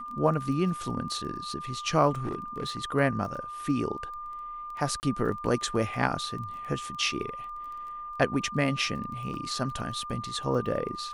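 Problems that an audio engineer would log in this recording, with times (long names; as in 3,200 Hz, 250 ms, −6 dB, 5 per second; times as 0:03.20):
surface crackle 16 per second −38 dBFS
whistle 1,200 Hz −36 dBFS
0:02.23–0:02.79: clipping −27.5 dBFS
0:05.00–0:05.03: drop-out 29 ms
0:09.34: drop-out 2.1 ms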